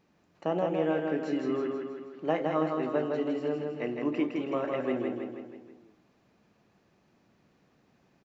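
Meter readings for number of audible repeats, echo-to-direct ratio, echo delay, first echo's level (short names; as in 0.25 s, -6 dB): 5, -2.5 dB, 0.161 s, -4.0 dB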